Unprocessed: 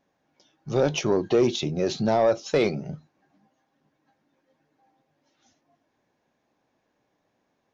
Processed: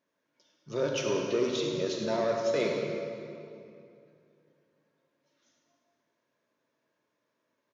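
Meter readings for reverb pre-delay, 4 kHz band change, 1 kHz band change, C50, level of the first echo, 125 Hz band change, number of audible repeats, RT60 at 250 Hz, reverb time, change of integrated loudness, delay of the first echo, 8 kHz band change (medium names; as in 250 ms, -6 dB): 30 ms, -4.0 dB, -7.5 dB, 1.0 dB, -10.5 dB, -10.5 dB, 1, 2.8 s, 2.6 s, -6.5 dB, 104 ms, no reading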